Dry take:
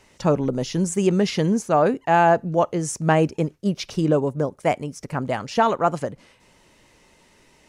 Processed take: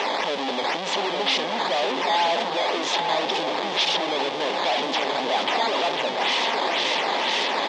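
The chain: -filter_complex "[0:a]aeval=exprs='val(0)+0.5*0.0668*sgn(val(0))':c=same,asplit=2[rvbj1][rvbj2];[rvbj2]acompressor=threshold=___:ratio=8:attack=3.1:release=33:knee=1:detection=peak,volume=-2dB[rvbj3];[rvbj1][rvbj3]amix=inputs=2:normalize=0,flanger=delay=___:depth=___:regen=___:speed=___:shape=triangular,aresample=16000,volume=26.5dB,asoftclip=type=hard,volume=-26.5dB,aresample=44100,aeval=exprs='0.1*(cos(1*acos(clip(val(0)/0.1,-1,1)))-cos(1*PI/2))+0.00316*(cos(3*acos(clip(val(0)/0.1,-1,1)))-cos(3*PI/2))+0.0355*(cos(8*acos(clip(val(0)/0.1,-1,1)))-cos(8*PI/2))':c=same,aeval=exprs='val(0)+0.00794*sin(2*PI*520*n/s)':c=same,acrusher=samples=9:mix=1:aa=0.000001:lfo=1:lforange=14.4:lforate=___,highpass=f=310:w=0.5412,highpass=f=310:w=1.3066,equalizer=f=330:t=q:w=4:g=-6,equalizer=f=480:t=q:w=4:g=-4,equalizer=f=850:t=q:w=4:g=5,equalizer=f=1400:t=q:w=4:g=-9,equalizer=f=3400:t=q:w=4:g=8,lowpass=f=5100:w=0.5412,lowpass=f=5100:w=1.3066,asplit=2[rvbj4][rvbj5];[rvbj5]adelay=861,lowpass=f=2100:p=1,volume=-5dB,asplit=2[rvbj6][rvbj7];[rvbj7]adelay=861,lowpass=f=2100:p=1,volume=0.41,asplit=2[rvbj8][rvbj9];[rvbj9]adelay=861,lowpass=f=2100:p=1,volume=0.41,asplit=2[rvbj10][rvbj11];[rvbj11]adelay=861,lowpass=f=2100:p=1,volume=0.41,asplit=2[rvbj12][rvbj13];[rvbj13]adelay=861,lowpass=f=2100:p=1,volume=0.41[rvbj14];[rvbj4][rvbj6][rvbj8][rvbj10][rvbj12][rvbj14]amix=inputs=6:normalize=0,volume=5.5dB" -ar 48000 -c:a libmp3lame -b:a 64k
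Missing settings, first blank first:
-25dB, 2.1, 7.6, -74, 0.38, 2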